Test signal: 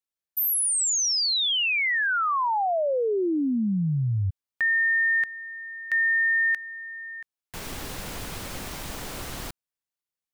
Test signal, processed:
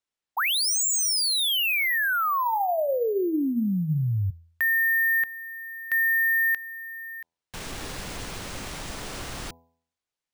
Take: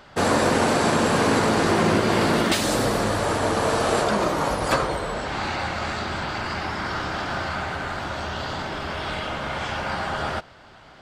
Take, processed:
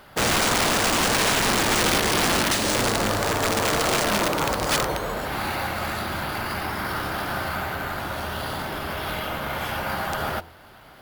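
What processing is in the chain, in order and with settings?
wrap-around overflow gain 15 dB
hum removal 83.27 Hz, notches 12
bad sample-rate conversion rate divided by 3×, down none, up hold

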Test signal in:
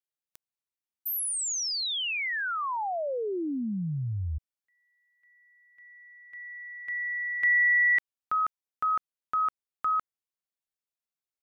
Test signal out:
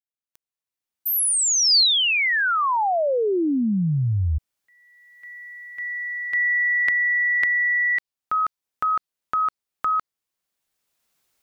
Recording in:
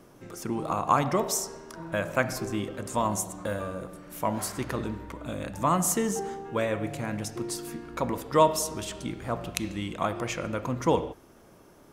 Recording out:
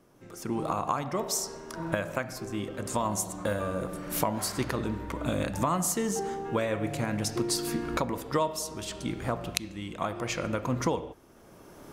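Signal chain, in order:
camcorder AGC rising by 15 dB per second, up to +31 dB
dynamic equaliser 4,500 Hz, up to +6 dB, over −41 dBFS, Q 2.7
level −8.5 dB

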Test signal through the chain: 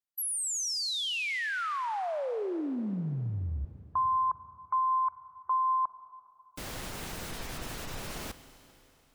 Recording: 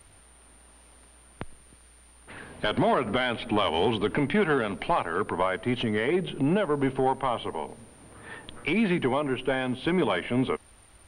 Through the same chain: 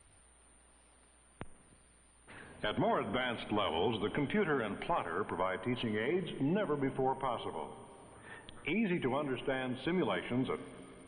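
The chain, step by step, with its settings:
gate on every frequency bin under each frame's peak −30 dB strong
four-comb reverb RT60 3.2 s, combs from 33 ms, DRR 12.5 dB
level −8.5 dB

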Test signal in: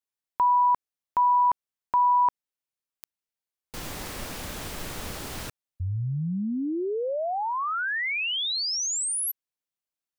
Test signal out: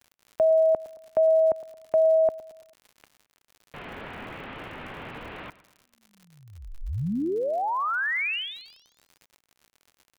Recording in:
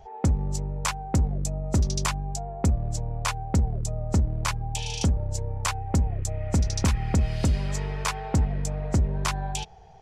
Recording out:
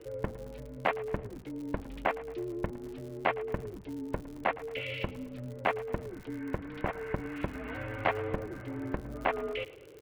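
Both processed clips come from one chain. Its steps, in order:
treble cut that deepens with the level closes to 1,900 Hz, closed at −20 dBFS
single-sideband voice off tune −340 Hz 420–3,200 Hz
on a send: repeating echo 111 ms, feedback 47%, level −18 dB
on the sum: surface crackle 99 per second −43 dBFS
level +1.5 dB

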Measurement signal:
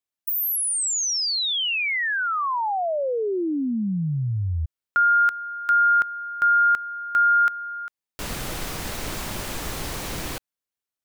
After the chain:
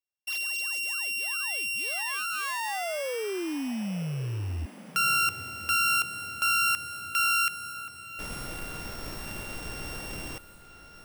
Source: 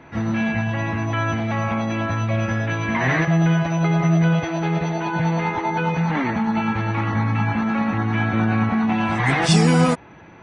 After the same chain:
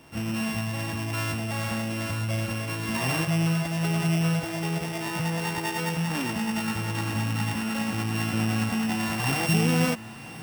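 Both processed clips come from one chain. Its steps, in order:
samples sorted by size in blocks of 16 samples
feedback delay with all-pass diffusion 1,023 ms, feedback 56%, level −15.5 dB
level −7 dB

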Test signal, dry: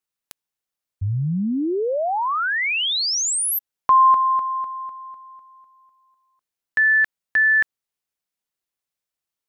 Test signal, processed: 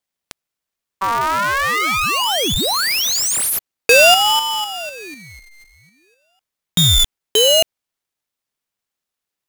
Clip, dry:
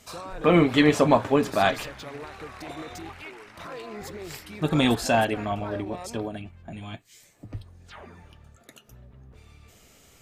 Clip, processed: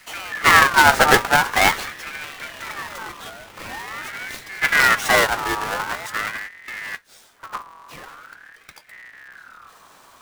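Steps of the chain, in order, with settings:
each half-wave held at its own peak
ring modulator whose carrier an LFO sweeps 1,500 Hz, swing 30%, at 0.45 Hz
level +4 dB

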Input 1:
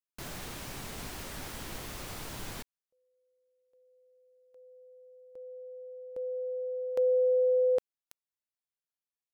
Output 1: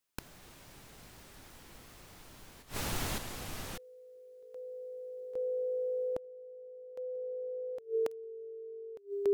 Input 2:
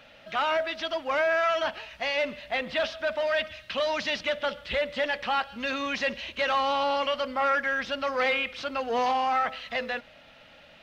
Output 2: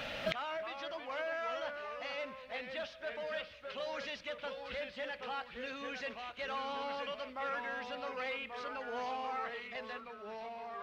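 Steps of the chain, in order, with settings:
delay with pitch and tempo change per echo 235 ms, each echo −2 semitones, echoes 2, each echo −6 dB
gate with flip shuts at −33 dBFS, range −25 dB
level +11 dB

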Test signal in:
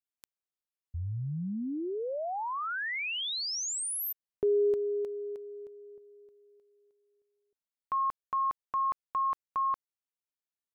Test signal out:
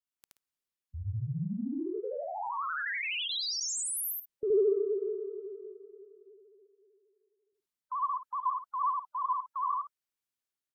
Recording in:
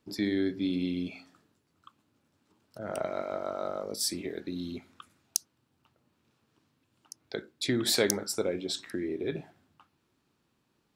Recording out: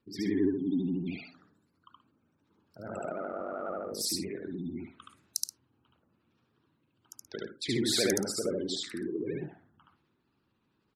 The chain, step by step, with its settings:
gate on every frequency bin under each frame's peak −20 dB strong
transient designer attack −1 dB, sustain +3 dB
parametric band 650 Hz −4 dB 0.78 octaves
in parallel at −9.5 dB: soft clipping −17.5 dBFS
on the sum: tape wow and flutter 12 Hz 130 cents
on a send: loudspeakers that aren't time-aligned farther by 25 metres 0 dB, 44 metres −12 dB
on the sum: level −5.5 dB

